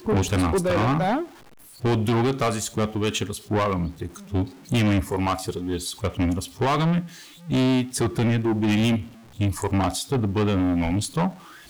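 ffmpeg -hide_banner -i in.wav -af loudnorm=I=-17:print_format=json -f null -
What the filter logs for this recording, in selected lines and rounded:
"input_i" : "-24.1",
"input_tp" : "-16.6",
"input_lra" : "1.6",
"input_thresh" : "-34.3",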